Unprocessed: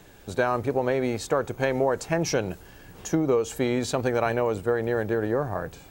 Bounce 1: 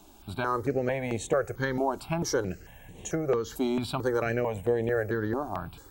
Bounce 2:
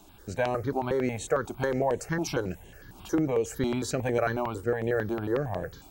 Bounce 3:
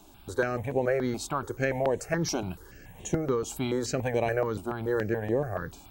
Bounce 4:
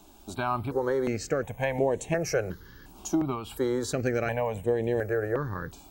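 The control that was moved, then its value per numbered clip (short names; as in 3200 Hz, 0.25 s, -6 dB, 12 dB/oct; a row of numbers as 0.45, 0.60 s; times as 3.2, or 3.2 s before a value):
step phaser, rate: 4.5, 11, 7, 2.8 Hz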